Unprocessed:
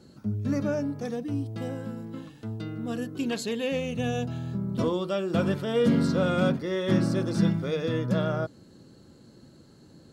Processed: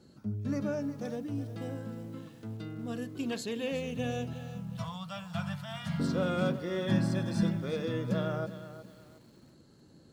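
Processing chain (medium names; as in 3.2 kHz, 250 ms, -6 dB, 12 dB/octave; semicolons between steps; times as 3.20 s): 4.33–6.00 s: elliptic band-stop 180–700 Hz, stop band 40 dB; 6.87–7.43 s: comb 1.2 ms, depth 60%; bit-crushed delay 362 ms, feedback 35%, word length 8-bit, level -12.5 dB; trim -5.5 dB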